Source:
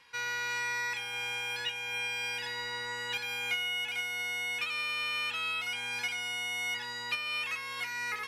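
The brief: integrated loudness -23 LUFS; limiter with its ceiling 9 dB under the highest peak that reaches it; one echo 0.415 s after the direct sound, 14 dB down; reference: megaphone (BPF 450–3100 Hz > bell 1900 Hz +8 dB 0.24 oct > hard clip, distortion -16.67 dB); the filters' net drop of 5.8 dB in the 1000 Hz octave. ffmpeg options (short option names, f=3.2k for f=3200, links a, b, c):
-af "equalizer=f=1k:t=o:g=-8,alimiter=level_in=8dB:limit=-24dB:level=0:latency=1,volume=-8dB,highpass=450,lowpass=3.1k,equalizer=f=1.9k:t=o:w=0.24:g=8,aecho=1:1:415:0.2,asoftclip=type=hard:threshold=-34.5dB,volume=14dB"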